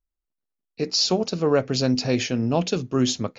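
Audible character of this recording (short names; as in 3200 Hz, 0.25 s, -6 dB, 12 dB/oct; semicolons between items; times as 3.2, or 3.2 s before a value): noise floor -83 dBFS; spectral tilt -4.5 dB/oct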